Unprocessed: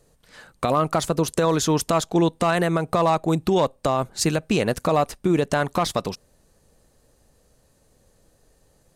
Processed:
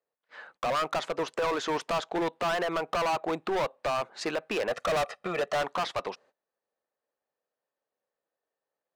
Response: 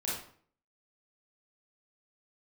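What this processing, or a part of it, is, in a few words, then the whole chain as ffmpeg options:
walkie-talkie: -filter_complex "[0:a]asettb=1/sr,asplit=3[link_01][link_02][link_03];[link_01]atrim=end=4.684[link_04];[link_02]atrim=start=4.68:end=5.62,asetpts=PTS-STARTPTS,afade=type=in:duration=0.004:curve=qsin,afade=type=out:start_time=0.936:duration=0.004:curve=qsin,aecho=1:1:1.6:0.99,atrim=end_sample=41454[link_05];[link_03]atrim=start=5.616[link_06];[link_04][link_05]acrossfade=duration=0.004:curve1=hsin:curve2=qsin[link_07];[link_07][link_06]acrossfade=duration=0.004:curve1=qsin:curve2=hsin,highpass=590,lowpass=2300,asoftclip=type=hard:threshold=-27dB,agate=range=-22dB:threshold=-58dB:ratio=16:detection=peak,volume=2dB"

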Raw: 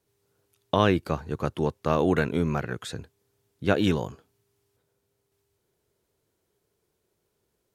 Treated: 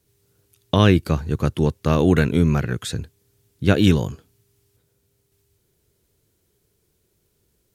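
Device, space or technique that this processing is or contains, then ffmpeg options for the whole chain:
smiley-face EQ: -af "lowshelf=frequency=120:gain=7.5,equalizer=frequency=820:width_type=o:width=1.9:gain=-7.5,highshelf=frequency=8000:gain=4,volume=7.5dB"

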